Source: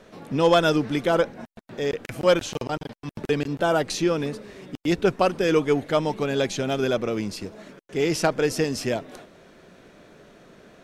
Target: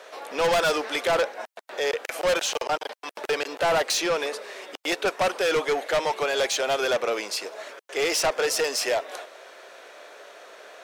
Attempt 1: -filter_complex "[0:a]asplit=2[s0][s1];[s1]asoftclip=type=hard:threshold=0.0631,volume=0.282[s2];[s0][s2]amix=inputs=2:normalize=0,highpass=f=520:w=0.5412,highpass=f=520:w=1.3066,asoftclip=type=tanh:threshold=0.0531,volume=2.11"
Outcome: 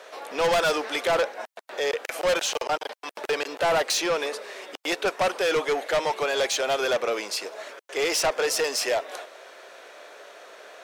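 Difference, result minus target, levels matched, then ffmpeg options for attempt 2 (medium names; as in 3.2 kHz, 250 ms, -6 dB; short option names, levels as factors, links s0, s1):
hard clipper: distortion +16 dB
-filter_complex "[0:a]asplit=2[s0][s1];[s1]asoftclip=type=hard:threshold=0.237,volume=0.282[s2];[s0][s2]amix=inputs=2:normalize=0,highpass=f=520:w=0.5412,highpass=f=520:w=1.3066,asoftclip=type=tanh:threshold=0.0531,volume=2.11"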